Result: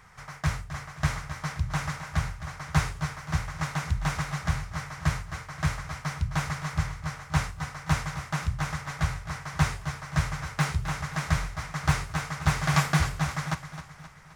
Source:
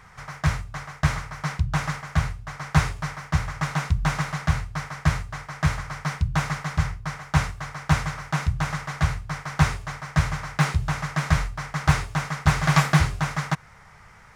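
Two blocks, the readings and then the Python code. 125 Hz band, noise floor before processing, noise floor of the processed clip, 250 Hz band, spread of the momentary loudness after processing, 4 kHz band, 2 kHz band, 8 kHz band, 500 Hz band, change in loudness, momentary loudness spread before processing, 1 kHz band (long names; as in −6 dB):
−4.5 dB, −50 dBFS, −47 dBFS, −4.5 dB, 8 LU, −3.0 dB, −4.0 dB, −2.0 dB, −4.5 dB, −4.5 dB, 9 LU, −4.5 dB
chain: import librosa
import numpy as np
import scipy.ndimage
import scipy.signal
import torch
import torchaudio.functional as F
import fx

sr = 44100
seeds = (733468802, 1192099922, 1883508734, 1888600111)

y = fx.high_shelf(x, sr, hz=5600.0, db=4.5)
y = fx.echo_feedback(y, sr, ms=263, feedback_pct=49, wet_db=-11.5)
y = y * librosa.db_to_amplitude(-5.0)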